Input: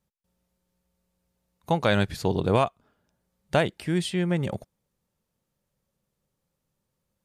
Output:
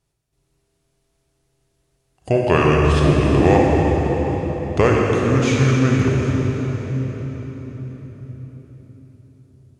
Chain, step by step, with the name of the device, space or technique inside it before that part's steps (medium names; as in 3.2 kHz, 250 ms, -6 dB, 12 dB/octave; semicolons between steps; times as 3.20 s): slowed and reverbed (tape speed -26%; reverberation RT60 5.0 s, pre-delay 29 ms, DRR -2.5 dB); trim +5 dB